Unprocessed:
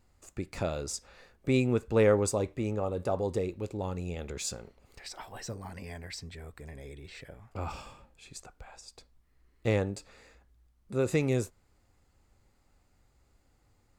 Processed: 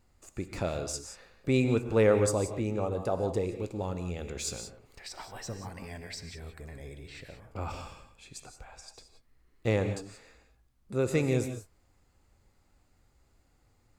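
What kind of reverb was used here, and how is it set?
gated-style reverb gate 200 ms rising, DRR 8 dB

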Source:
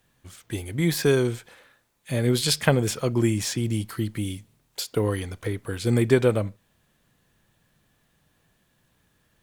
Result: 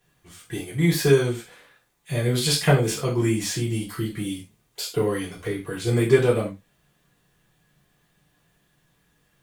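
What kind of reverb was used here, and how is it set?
gated-style reverb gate 120 ms falling, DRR -5.5 dB; trim -5 dB

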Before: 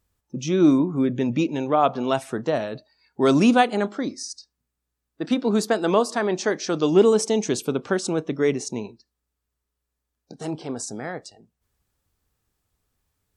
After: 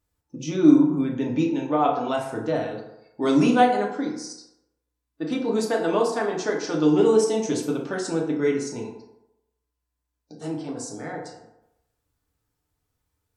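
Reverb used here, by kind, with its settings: FDN reverb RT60 0.88 s, low-frequency decay 0.8×, high-frequency decay 0.5×, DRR -2 dB; trim -6.5 dB

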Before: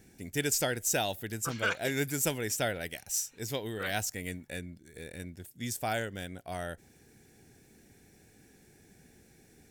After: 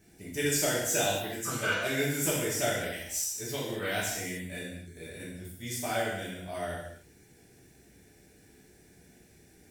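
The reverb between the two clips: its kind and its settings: gated-style reverb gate 310 ms falling, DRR -8 dB; trim -6.5 dB

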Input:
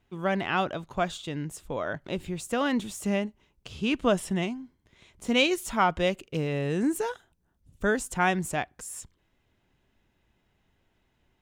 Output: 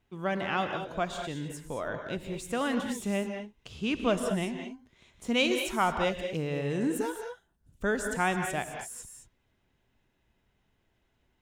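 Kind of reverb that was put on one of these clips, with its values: gated-style reverb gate 240 ms rising, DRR 5 dB; trim -3.5 dB

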